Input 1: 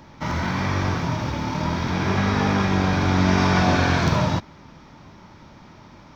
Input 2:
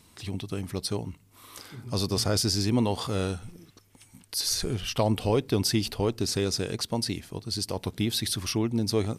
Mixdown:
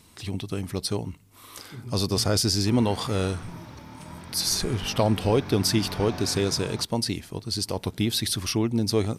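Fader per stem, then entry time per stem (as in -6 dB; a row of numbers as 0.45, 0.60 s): -17.5, +2.5 dB; 2.45, 0.00 s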